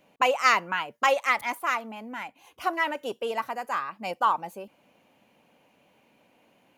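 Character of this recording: noise floor -65 dBFS; spectral tilt -2.0 dB/octave

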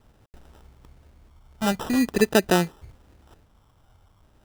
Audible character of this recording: a quantiser's noise floor 12-bit, dither none; phasing stages 6, 0.45 Hz, lowest notch 360–3900 Hz; aliases and images of a low sample rate 2.2 kHz, jitter 0%

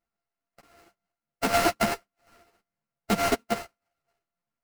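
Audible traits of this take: a buzz of ramps at a fixed pitch in blocks of 64 samples; random-step tremolo; aliases and images of a low sample rate 3.5 kHz, jitter 20%; a shimmering, thickened sound

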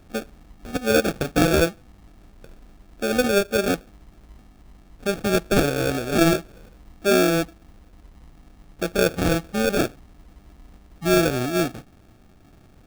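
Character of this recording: aliases and images of a low sample rate 1 kHz, jitter 0%

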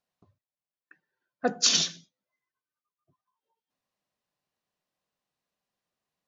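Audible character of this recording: noise floor -95 dBFS; spectral tilt -0.5 dB/octave

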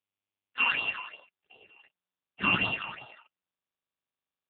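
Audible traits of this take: a buzz of ramps at a fixed pitch in blocks of 16 samples; phasing stages 8, 2.7 Hz, lowest notch 490–2000 Hz; a quantiser's noise floor 12-bit, dither none; AMR-NB

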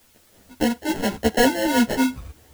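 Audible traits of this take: aliases and images of a low sample rate 1.2 kHz, jitter 0%; tremolo saw up 2.6 Hz, depth 40%; a quantiser's noise floor 10-bit, dither triangular; a shimmering, thickened sound

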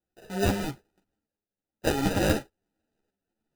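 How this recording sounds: aliases and images of a low sample rate 1.1 kHz, jitter 0%; tremolo saw up 0.97 Hz, depth 60%; a shimmering, thickened sound

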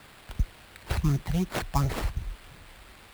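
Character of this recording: a quantiser's noise floor 8-bit, dither triangular; phasing stages 12, 2.8 Hz, lowest notch 340–1100 Hz; aliases and images of a low sample rate 6.2 kHz, jitter 20%

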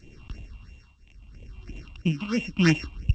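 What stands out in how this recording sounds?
a buzz of ramps at a fixed pitch in blocks of 16 samples; tremolo triangle 0.77 Hz, depth 95%; phasing stages 6, 3 Hz, lowest notch 430–1400 Hz; G.722

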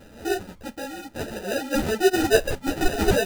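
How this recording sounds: phasing stages 12, 0.69 Hz, lowest notch 570–3500 Hz; aliases and images of a low sample rate 1.1 kHz, jitter 0%; a shimmering, thickened sound

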